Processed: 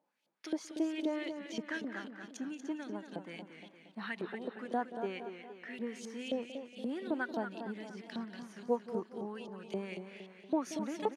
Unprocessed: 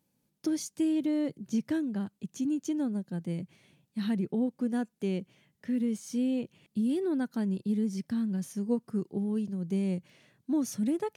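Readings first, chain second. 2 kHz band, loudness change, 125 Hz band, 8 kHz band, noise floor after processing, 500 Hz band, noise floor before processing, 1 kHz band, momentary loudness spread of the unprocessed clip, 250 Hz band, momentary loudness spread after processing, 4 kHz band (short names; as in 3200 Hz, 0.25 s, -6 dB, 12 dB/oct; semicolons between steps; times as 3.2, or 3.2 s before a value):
+6.0 dB, -8.0 dB, -15.5 dB, -9.5 dB, -61 dBFS, -2.5 dB, -77 dBFS, +5.0 dB, 7 LU, -10.5 dB, 11 LU, -0.5 dB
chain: LFO band-pass saw up 3.8 Hz 600–3700 Hz; HPF 200 Hz 12 dB/oct; outdoor echo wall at 31 m, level -15 dB; warbling echo 0.233 s, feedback 51%, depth 97 cents, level -8.5 dB; gain +9.5 dB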